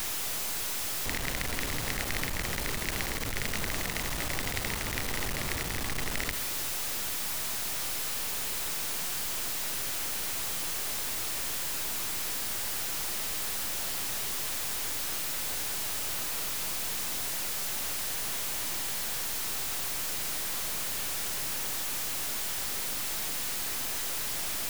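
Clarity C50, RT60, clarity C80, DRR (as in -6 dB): 13.0 dB, 1.2 s, 14.5 dB, 11.5 dB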